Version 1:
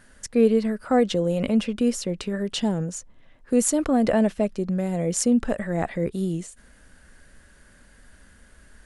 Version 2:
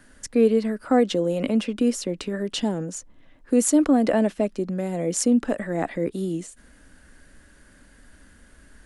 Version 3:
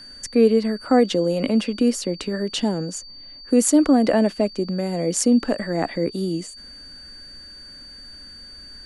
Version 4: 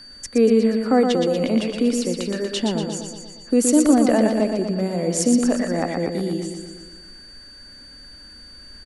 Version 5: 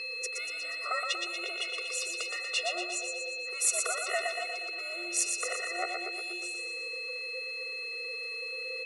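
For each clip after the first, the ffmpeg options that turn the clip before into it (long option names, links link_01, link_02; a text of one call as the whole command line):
ffmpeg -i in.wav -filter_complex "[0:a]equalizer=frequency=290:width_type=o:width=0.37:gain=8,acrossover=split=190|830[link_01][link_02][link_03];[link_01]acompressor=threshold=-40dB:ratio=6[link_04];[link_04][link_02][link_03]amix=inputs=3:normalize=0" out.wav
ffmpeg -i in.wav -af "aeval=exprs='val(0)+0.00794*sin(2*PI*4600*n/s)':channel_layout=same,volume=2.5dB" out.wav
ffmpeg -i in.wav -af "aecho=1:1:119|238|357|476|595|714|833|952:0.562|0.326|0.189|0.11|0.0636|0.0369|0.0214|0.0124,volume=-1dB" out.wav
ffmpeg -i in.wav -af "afftfilt=real='real(if(between(b,1,1008),(2*floor((b-1)/24)+1)*24-b,b),0)':imag='imag(if(between(b,1,1008),(2*floor((b-1)/24)+1)*24-b,b),0)*if(between(b,1,1008),-1,1)':win_size=2048:overlap=0.75,aeval=exprs='val(0)+0.0398*sin(2*PI*2600*n/s)':channel_layout=same,afftfilt=real='re*eq(mod(floor(b*sr/1024/370),2),1)':imag='im*eq(mod(floor(b*sr/1024/370),2),1)':win_size=1024:overlap=0.75" out.wav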